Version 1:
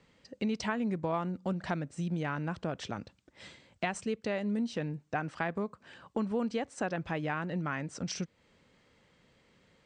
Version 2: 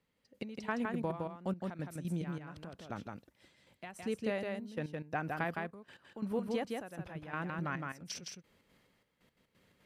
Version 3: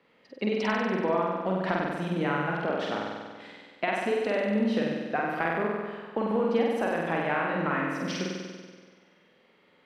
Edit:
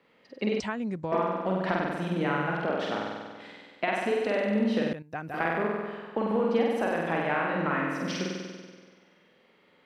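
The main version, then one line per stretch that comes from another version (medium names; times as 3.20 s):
3
0.60–1.12 s: from 1
4.93–5.34 s: from 2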